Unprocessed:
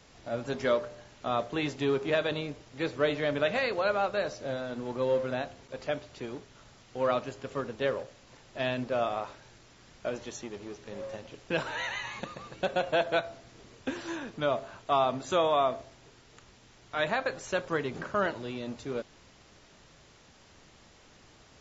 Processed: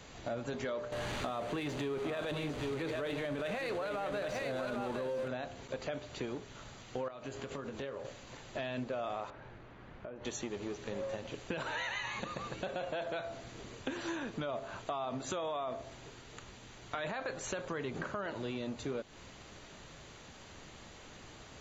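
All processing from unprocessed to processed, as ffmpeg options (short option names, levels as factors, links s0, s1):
-filter_complex "[0:a]asettb=1/sr,asplit=3[s0][s1][s2];[s0]atrim=end=0.924[s3];[s1]atrim=start=0.92:end=5.28,asetpts=PTS-STARTPTS,afade=t=in:d=0.004:c=qsin,afade=t=out:st=4.356:d=0.004:c=qsin,aeval=exprs='val(0)+0.5*0.0168*sgn(val(0))':c=same,adynamicsmooth=sensitivity=6:basefreq=4700,aecho=1:1:805:0.422,atrim=end_sample=192276[s4];[s2]atrim=start=5.276[s5];[s3][s4]acrossfade=d=0.004:c1=hsin:c2=qsin[s6];[s6][s5]acrossfade=d=0.004:c1=qsin:c2=hsin,asettb=1/sr,asplit=3[s7][s8][s9];[s7]atrim=end=7.084[s10];[s8]atrim=start=7.08:end=8.05,asetpts=PTS-STARTPTS,afade=t=in:d=0.004:c=qsin,afade=t=out:st=0.966:d=0.004:c=qsin,acompressor=threshold=0.00891:ratio=16:attack=3.2:release=140:knee=1:detection=peak,asplit=2[s11][s12];[s12]adelay=22,volume=0.299[s13];[s11][s13]amix=inputs=2:normalize=0,atrim=end_sample=42777[s14];[s9]atrim=start=8.046[s15];[s10][s14]acrossfade=d=0.004:c1=hsin:c2=qsin[s16];[s16][s15]acrossfade=d=0.004:c1=qsin:c2=hsin,asettb=1/sr,asplit=3[s17][s18][s19];[s17]atrim=end=9.304[s20];[s18]atrim=start=9.3:end=10.25,asetpts=PTS-STARTPTS,afade=t=in:d=0.004:c=qsin,afade=t=out:st=0.946:d=0.004:c=qsin,lowpass=1800,acompressor=threshold=0.00447:ratio=8:attack=3.2:release=140:knee=1:detection=peak[s21];[s19]atrim=start=10.246[s22];[s20][s21]acrossfade=d=0.004:c1=hsin:c2=qsin[s23];[s23][s22]acrossfade=d=0.004:c1=qsin:c2=hsin,bandreject=f=5300:w=5.9,alimiter=level_in=1.12:limit=0.0631:level=0:latency=1:release=24,volume=0.891,acompressor=threshold=0.00891:ratio=4,volume=1.78"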